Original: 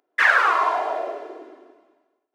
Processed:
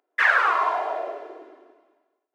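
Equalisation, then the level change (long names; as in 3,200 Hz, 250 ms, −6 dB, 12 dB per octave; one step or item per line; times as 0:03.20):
bass and treble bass −10 dB, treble −5 dB
−2.0 dB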